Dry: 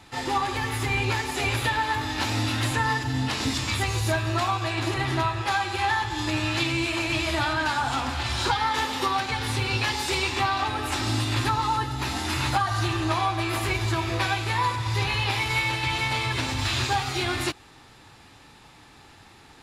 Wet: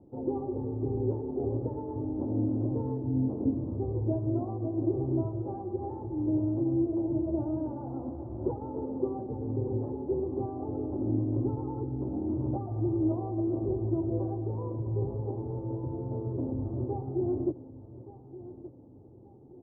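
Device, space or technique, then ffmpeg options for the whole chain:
under water: -filter_complex "[0:a]lowpass=f=410:w=0.5412,lowpass=f=410:w=1.3066,lowpass=f=1100:w=0.5412,lowpass=f=1100:w=1.3066,aemphasis=mode=production:type=riaa,equalizer=f=560:t=o:w=0.33:g=4.5,asettb=1/sr,asplit=3[s0][s1][s2];[s0]atrim=end=7.774[s3];[s1]atrim=start=7.77:end=8.4,asetpts=PTS-STARTPTS,afade=t=in:d=0.004:c=qsin,afade=t=out:st=0.626:d=0.004:c=qsin,tiltshelf=f=970:g=-5[s4];[s2]atrim=start=8.396[s5];[s3][s4]acrossfade=d=0.004:c1=hsin:c2=qsin[s6];[s6][s5]acrossfade=d=0.004:c1=qsin:c2=hsin,aecho=1:1:1174|2348|3522:0.168|0.0604|0.0218,volume=2.51"

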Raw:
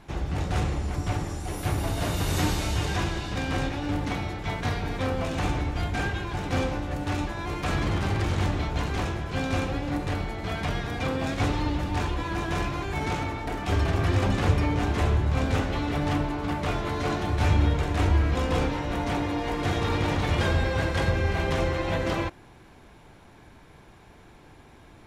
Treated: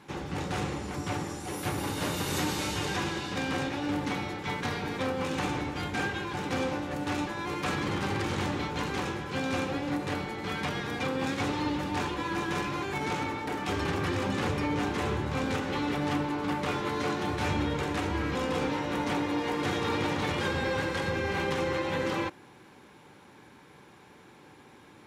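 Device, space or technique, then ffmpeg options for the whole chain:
PA system with an anti-feedback notch: -af "highpass=160,asuperstop=centerf=670:order=4:qfactor=6.2,alimiter=limit=0.1:level=0:latency=1:release=93"

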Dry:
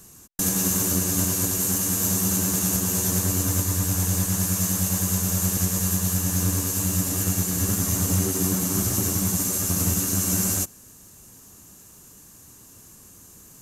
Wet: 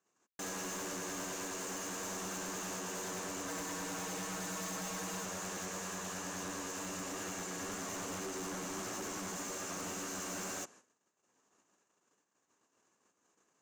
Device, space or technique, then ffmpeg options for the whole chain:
walkie-talkie: -filter_complex "[0:a]equalizer=f=6900:w=1.8:g=9.5,asettb=1/sr,asplit=3[s0][s1][s2];[s0]atrim=end=3.484[s3];[s1]atrim=start=3.48:end=5.25,asetpts=PTS-STARTPTS,afade=t=in:d=0.004:c=qsin,afade=t=out:st=1.766:d=0.004:c=qsin,aecho=1:1:6.3:1,atrim=end_sample=78057[s4];[s2]atrim=start=5.246[s5];[s3][s4]acrossfade=d=0.004:c1=hsin:c2=qsin[s6];[s6][s5]acrossfade=d=0.004:c1=qsin:c2=hsin,highpass=450,lowpass=2300,asoftclip=type=hard:threshold=0.0141,agate=range=0.0708:threshold=0.00141:ratio=16:detection=peak,volume=0.841"

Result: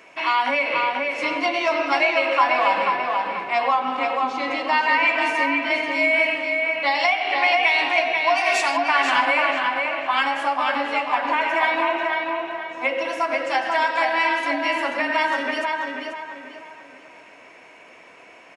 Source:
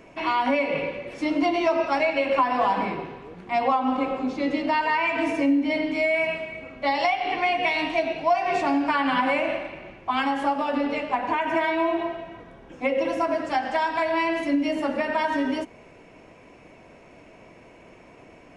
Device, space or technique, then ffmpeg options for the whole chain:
filter by subtraction: -filter_complex "[0:a]asplit=3[s0][s1][s2];[s0]afade=t=out:st=8.35:d=0.02[s3];[s1]aemphasis=mode=production:type=riaa,afade=t=in:st=8.35:d=0.02,afade=t=out:st=8.76:d=0.02[s4];[s2]afade=t=in:st=8.76:d=0.02[s5];[s3][s4][s5]amix=inputs=3:normalize=0,asplit=2[s6][s7];[s7]lowpass=1700,volume=-1[s8];[s6][s8]amix=inputs=2:normalize=0,asplit=2[s9][s10];[s10]adelay=488,lowpass=f=3800:p=1,volume=0.708,asplit=2[s11][s12];[s12]adelay=488,lowpass=f=3800:p=1,volume=0.38,asplit=2[s13][s14];[s14]adelay=488,lowpass=f=3800:p=1,volume=0.38,asplit=2[s15][s16];[s16]adelay=488,lowpass=f=3800:p=1,volume=0.38,asplit=2[s17][s18];[s18]adelay=488,lowpass=f=3800:p=1,volume=0.38[s19];[s9][s11][s13][s15][s17][s19]amix=inputs=6:normalize=0,volume=1.68"

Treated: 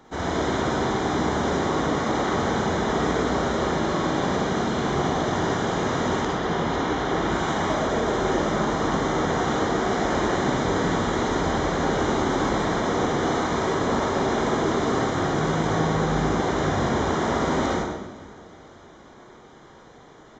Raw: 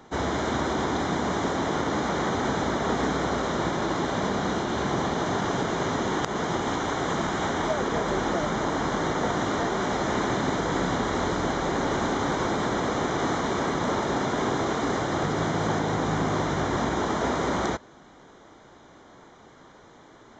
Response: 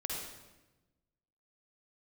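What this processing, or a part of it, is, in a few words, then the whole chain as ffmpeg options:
bathroom: -filter_complex "[0:a]asettb=1/sr,asplit=3[s0][s1][s2];[s0]atrim=end=6.224[s3];[s1]atrim=start=6.22:end=7.29,asetpts=PTS-STARTPTS,afade=t=in:d=0.004:c=qsin,afade=t=out:st=1.066:d=0.004:c=qsin,lowpass=5400[s4];[s2]atrim=start=7.286[s5];[s3][s4]acrossfade=d=0.004:c1=hsin:c2=qsin[s6];[s6][s5]acrossfade=d=0.004:c1=qsin:c2=hsin,aecho=1:1:510|1020|1530|2040:0.0668|0.0368|0.0202|0.0111[s7];[1:a]atrim=start_sample=2205[s8];[s7][s8]afir=irnorm=-1:irlink=0"

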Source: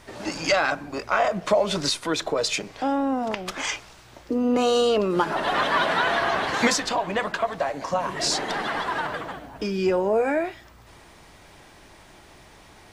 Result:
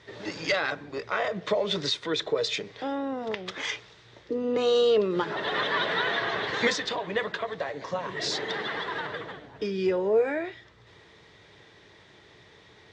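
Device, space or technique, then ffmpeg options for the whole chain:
car door speaker: -af "highpass=98,equalizer=f=110:t=q:w=4:g=5,equalizer=f=250:t=q:w=4:g=-5,equalizer=f=440:t=q:w=4:g=9,equalizer=f=730:t=q:w=4:g=-4,equalizer=f=1900:t=q:w=4:g=8,equalizer=f=3600:t=q:w=4:g=10,lowpass=f=6500:w=0.5412,lowpass=f=6500:w=1.3066,lowshelf=f=360:g=4.5,volume=0.398"

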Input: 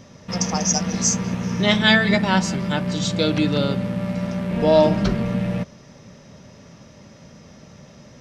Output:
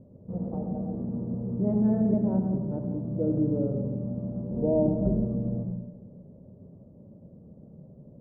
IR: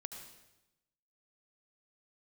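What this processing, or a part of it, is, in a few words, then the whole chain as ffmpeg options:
next room: -filter_complex "[0:a]lowpass=f=550:w=0.5412,lowpass=f=550:w=1.3066[s0];[1:a]atrim=start_sample=2205[s1];[s0][s1]afir=irnorm=-1:irlink=0,volume=0.891"

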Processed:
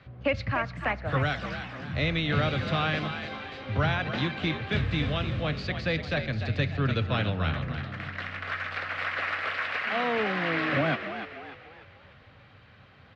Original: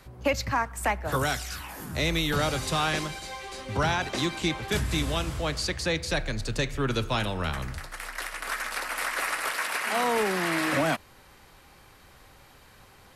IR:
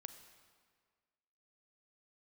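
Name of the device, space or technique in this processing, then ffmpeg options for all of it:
frequency-shifting delay pedal into a guitar cabinet: -filter_complex "[0:a]asplit=6[s0][s1][s2][s3][s4][s5];[s1]adelay=295,afreqshift=62,volume=0.355[s6];[s2]adelay=590,afreqshift=124,volume=0.153[s7];[s3]adelay=885,afreqshift=186,volume=0.0653[s8];[s4]adelay=1180,afreqshift=248,volume=0.0282[s9];[s5]adelay=1475,afreqshift=310,volume=0.0122[s10];[s0][s6][s7][s8][s9][s10]amix=inputs=6:normalize=0,highpass=81,equalizer=f=92:t=q:w=4:g=10,equalizer=f=140:t=q:w=4:g=4,equalizer=f=370:t=q:w=4:g=-7,equalizer=f=920:t=q:w=4:g=-9,lowpass=f=3500:w=0.5412,lowpass=f=3500:w=1.3066"

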